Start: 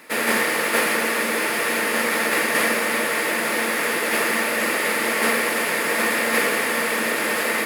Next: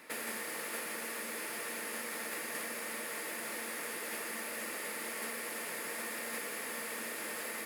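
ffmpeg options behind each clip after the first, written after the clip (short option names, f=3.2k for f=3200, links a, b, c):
-filter_complex "[0:a]acrossover=split=1400|5400[a][b][c];[a]acompressor=threshold=-37dB:ratio=4[d];[b]acompressor=threshold=-38dB:ratio=4[e];[c]acompressor=threshold=-34dB:ratio=4[f];[d][e][f]amix=inputs=3:normalize=0,volume=-8.5dB"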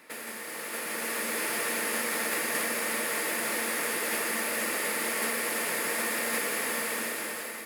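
-af "dynaudnorm=f=370:g=5:m=10dB"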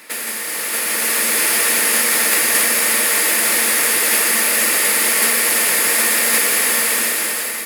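-af "highshelf=f=2.1k:g=10.5,volume=7.5dB"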